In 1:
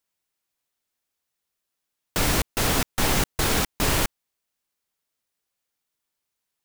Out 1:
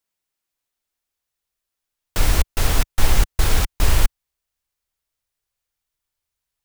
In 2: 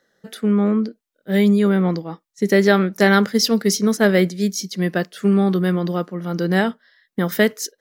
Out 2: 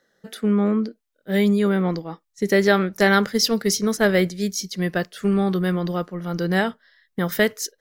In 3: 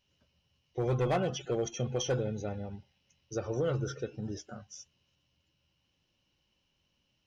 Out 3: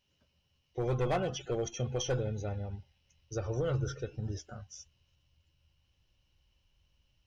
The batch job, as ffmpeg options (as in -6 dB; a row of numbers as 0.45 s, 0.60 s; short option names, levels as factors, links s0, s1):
-af "asubboost=boost=8:cutoff=77,volume=0.891"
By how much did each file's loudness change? +1.5 LU, -3.0 LU, -1.0 LU